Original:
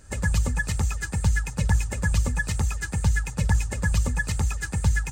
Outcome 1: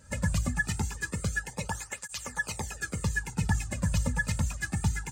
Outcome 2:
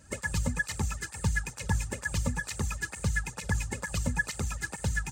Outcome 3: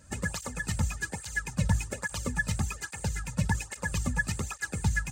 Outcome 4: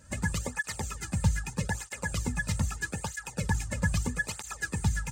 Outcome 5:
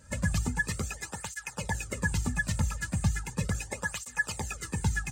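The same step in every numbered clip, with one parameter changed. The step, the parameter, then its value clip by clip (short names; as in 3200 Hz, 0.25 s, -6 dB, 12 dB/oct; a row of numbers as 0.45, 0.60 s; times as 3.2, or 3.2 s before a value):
tape flanging out of phase, nulls at: 0.24, 2.2, 1.2, 0.79, 0.37 Hz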